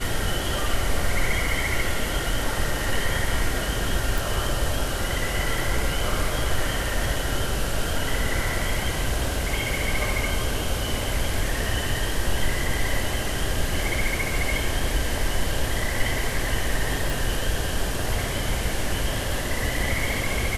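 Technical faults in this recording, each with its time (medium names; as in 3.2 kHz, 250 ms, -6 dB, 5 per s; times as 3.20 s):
4.18 s: pop
17.10 s: pop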